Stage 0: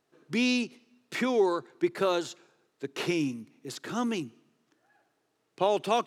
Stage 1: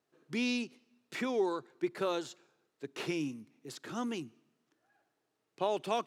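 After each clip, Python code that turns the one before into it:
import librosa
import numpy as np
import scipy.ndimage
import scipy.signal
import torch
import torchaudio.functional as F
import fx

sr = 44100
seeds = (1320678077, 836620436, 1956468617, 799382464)

y = fx.wow_flutter(x, sr, seeds[0], rate_hz=2.1, depth_cents=28.0)
y = y * 10.0 ** (-6.5 / 20.0)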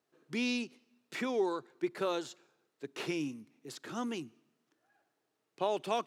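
y = fx.low_shelf(x, sr, hz=67.0, db=-10.5)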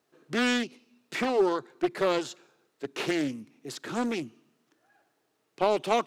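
y = fx.doppler_dist(x, sr, depth_ms=0.42)
y = y * 10.0 ** (7.5 / 20.0)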